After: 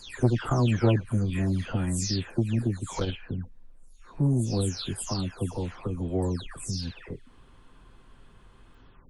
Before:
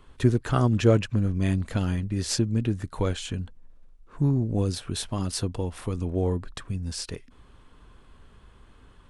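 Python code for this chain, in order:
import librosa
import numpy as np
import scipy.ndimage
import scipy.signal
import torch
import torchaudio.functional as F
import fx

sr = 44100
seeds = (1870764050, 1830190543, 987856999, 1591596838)

y = fx.spec_delay(x, sr, highs='early', ms=350)
y = fx.transformer_sat(y, sr, knee_hz=270.0)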